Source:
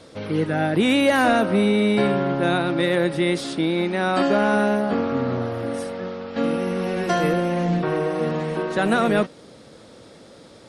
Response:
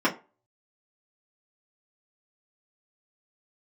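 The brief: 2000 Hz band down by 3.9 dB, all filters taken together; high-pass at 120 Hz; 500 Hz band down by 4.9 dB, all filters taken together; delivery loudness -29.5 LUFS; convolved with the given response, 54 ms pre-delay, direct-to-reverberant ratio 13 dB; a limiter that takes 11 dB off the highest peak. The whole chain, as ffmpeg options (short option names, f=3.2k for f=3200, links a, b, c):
-filter_complex "[0:a]highpass=120,equalizer=f=500:t=o:g=-6,equalizer=f=2k:t=o:g=-5,alimiter=limit=-21dB:level=0:latency=1,asplit=2[a][b];[1:a]atrim=start_sample=2205,adelay=54[c];[b][c]afir=irnorm=-1:irlink=0,volume=-27.5dB[d];[a][d]amix=inputs=2:normalize=0,volume=-1dB"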